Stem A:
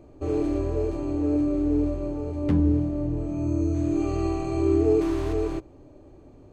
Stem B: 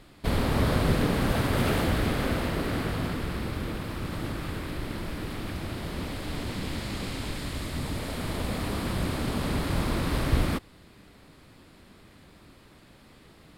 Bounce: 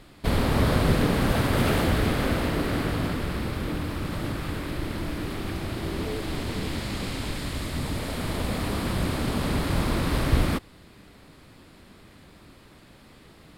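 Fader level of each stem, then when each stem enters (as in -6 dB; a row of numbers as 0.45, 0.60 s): -14.5, +2.5 dB; 1.20, 0.00 s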